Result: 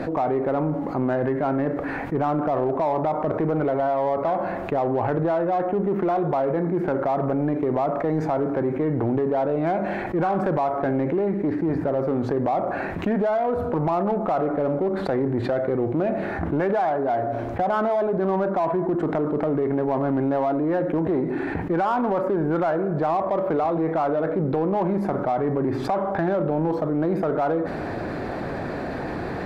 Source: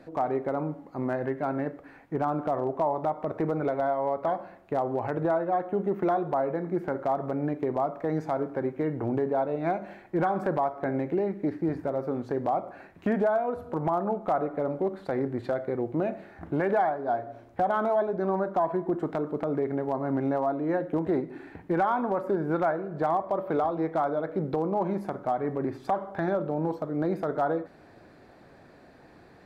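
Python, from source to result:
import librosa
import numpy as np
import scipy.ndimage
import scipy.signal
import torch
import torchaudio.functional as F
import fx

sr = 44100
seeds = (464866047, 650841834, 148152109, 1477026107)

p1 = fx.high_shelf(x, sr, hz=3500.0, db=-11.0)
p2 = 10.0 ** (-31.0 / 20.0) * np.tanh(p1 / 10.0 ** (-31.0 / 20.0))
p3 = p1 + (p2 * librosa.db_to_amplitude(-5.0))
y = fx.env_flatten(p3, sr, amount_pct=70)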